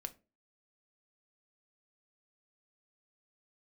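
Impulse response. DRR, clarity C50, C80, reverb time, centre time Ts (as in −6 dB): 7.5 dB, 19.0 dB, 25.5 dB, 0.30 s, 5 ms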